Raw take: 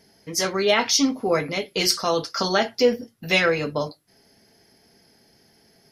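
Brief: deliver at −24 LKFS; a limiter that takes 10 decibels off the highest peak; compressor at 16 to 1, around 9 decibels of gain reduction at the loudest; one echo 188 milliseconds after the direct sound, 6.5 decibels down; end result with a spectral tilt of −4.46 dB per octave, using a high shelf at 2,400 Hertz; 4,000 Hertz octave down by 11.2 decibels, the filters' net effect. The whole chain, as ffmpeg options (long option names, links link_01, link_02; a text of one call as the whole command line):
ffmpeg -i in.wav -af "highshelf=frequency=2400:gain=-8.5,equalizer=frequency=4000:width_type=o:gain=-7,acompressor=threshold=-22dB:ratio=16,alimiter=limit=-22dB:level=0:latency=1,aecho=1:1:188:0.473,volume=7.5dB" out.wav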